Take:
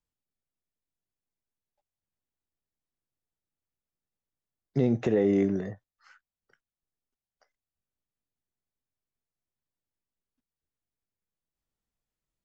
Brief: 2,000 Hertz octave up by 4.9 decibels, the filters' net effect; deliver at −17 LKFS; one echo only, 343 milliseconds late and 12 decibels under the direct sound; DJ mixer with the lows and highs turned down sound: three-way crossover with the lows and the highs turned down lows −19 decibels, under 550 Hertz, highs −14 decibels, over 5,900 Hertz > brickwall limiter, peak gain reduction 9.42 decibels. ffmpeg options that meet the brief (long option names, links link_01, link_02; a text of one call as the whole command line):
ffmpeg -i in.wav -filter_complex "[0:a]acrossover=split=550 5900:gain=0.112 1 0.2[link_01][link_02][link_03];[link_01][link_02][link_03]amix=inputs=3:normalize=0,equalizer=frequency=2000:width_type=o:gain=5.5,aecho=1:1:343:0.251,volume=25.5dB,alimiter=limit=-5.5dB:level=0:latency=1" out.wav